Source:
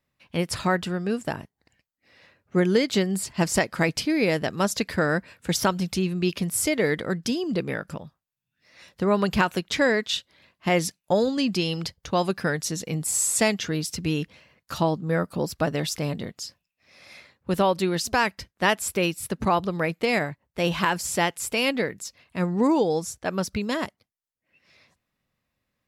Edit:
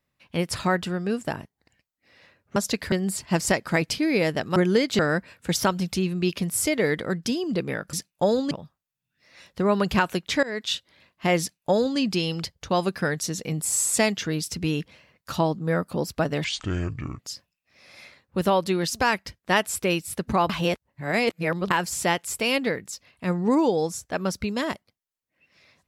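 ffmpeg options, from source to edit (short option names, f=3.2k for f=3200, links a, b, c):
-filter_complex "[0:a]asplit=12[a][b][c][d][e][f][g][h][i][j][k][l];[a]atrim=end=2.562[m];[b]atrim=start=4.628:end=4.992[n];[c]atrim=start=2.988:end=4.632[o];[d]atrim=start=2.558:end=2.992[p];[e]atrim=start=4.988:end=7.932[q];[f]atrim=start=10.818:end=11.402[r];[g]atrim=start=7.928:end=9.85,asetpts=PTS-STARTPTS,afade=t=out:st=1.918:d=0.004:c=hsin:silence=0.0749894[s];[h]atrim=start=9.85:end=15.864,asetpts=PTS-STARTPTS,afade=t=in:d=0.27:silence=0.0749894[t];[i]atrim=start=15.86:end=16.32,asetpts=PTS-STARTPTS,asetrate=26901,aresample=44100[u];[j]atrim=start=16.316:end=19.622[v];[k]atrim=start=19.618:end=20.832,asetpts=PTS-STARTPTS,areverse[w];[l]atrim=start=20.828[x];[m][n]acrossfade=d=0.004:c1=hsin:c2=hsin[y];[y][o]acrossfade=d=0.004:c1=hsin:c2=hsin[z];[z][p]acrossfade=d=0.004:c1=hsin:c2=hsin[aa];[aa][q]acrossfade=d=0.004:c1=hsin:c2=hsin[ab];[ab][r]acrossfade=d=0.004:c1=hsin:c2=hsin[ac];[s][t]concat=n=2:v=0:a=1[ad];[ac][ad]acrossfade=d=0.004:c1=hsin:c2=hsin[ae];[ae][u]acrossfade=d=0.004:c1=hsin:c2=hsin[af];[af][v]acrossfade=d=0.004:c1=hsin:c2=hsin[ag];[ag][w]acrossfade=d=0.004:c1=hsin:c2=hsin[ah];[ah][x]acrossfade=d=0.004:c1=hsin:c2=hsin"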